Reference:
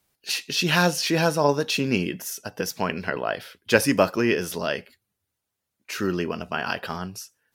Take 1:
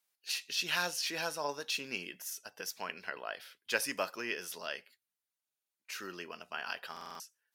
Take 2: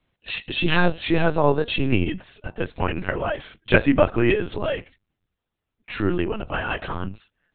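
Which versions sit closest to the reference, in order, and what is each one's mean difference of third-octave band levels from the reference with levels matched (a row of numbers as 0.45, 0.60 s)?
1, 2; 6.0, 9.0 dB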